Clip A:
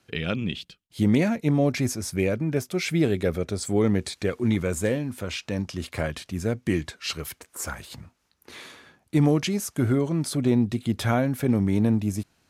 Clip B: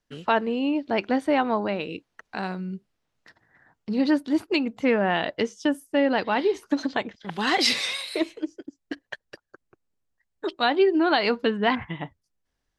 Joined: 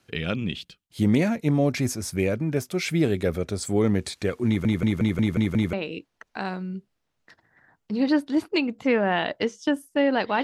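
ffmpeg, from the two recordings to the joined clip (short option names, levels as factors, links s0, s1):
-filter_complex "[0:a]apad=whole_dur=10.43,atrim=end=10.43,asplit=7[s0][s1][s2][s3][s4][s5][s6];[s0]atrim=end=4.652[s7];[s1]atrim=start=4.468:end=4.652[s8];[s2]atrim=start=4.468:end=4.652[s9];[s3]atrim=start=4.468:end=4.652[s10];[s4]atrim=start=4.468:end=4.652[s11];[s5]atrim=start=4.468:end=4.652[s12];[s6]atrim=start=4.468:end=4.652[s13];[1:a]atrim=start=1.708:end=6.41[s14];[s7][s8]acrossfade=d=0.004:c1=hsin:c2=hsin[s15];[s15][s9]acrossfade=d=0.004:c1=hsin:c2=hsin[s16];[s16][s10]acrossfade=d=0.004:c1=hsin:c2=hsin[s17];[s17][s11]acrossfade=d=0.004:c1=hsin:c2=hsin[s18];[s18][s12]acrossfade=d=0.004:c1=hsin:c2=hsin[s19];[s19][s13]acrossfade=d=0.004:c1=hsin:c2=hsin[s20];[s20][s14]acrossfade=d=0.004:c1=hsin:c2=hsin"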